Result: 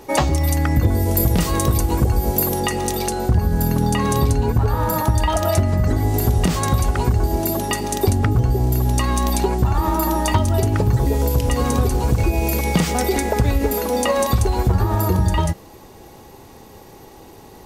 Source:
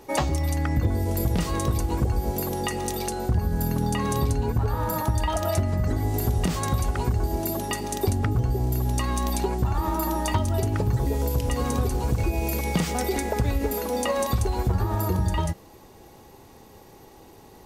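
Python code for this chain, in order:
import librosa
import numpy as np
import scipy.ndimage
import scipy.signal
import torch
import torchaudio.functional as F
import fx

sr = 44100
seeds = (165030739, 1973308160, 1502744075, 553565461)

y = fx.high_shelf(x, sr, hz=11000.0, db=10.5, at=(0.41, 2.6))
y = y * librosa.db_to_amplitude(6.5)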